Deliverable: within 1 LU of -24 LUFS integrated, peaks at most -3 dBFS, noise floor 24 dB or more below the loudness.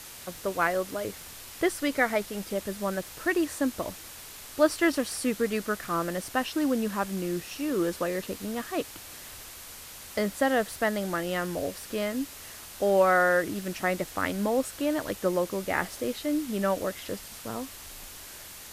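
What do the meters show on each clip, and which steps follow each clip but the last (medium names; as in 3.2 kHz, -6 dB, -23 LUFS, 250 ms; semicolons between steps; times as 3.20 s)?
noise floor -45 dBFS; noise floor target -53 dBFS; loudness -29.0 LUFS; peak level -9.0 dBFS; loudness target -24.0 LUFS
-> noise reduction 8 dB, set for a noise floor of -45 dBFS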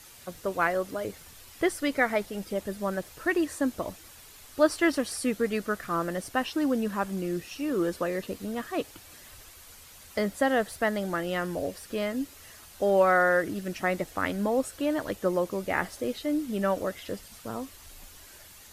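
noise floor -51 dBFS; noise floor target -53 dBFS
-> noise reduction 6 dB, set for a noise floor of -51 dBFS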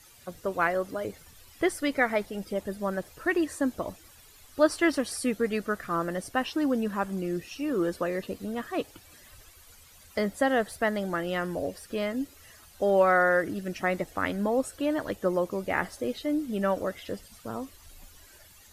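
noise floor -54 dBFS; loudness -29.0 LUFS; peak level -9.0 dBFS; loudness target -24.0 LUFS
-> trim +5 dB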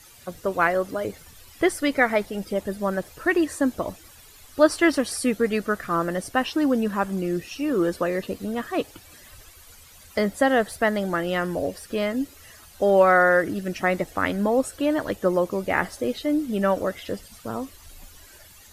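loudness -24.0 LUFS; peak level -4.0 dBFS; noise floor -49 dBFS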